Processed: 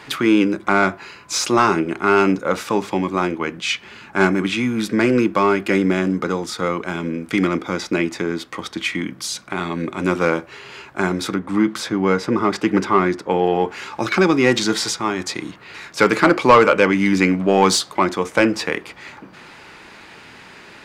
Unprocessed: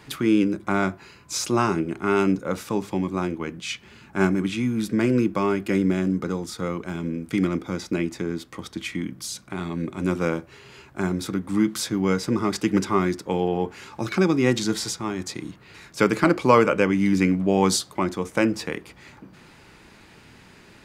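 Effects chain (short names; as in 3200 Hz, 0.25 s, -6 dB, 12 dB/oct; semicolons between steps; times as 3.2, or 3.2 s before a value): 11.35–13.44 high shelf 2800 Hz -9.5 dB; overdrive pedal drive 14 dB, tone 3400 Hz, clips at -4 dBFS; gain +3 dB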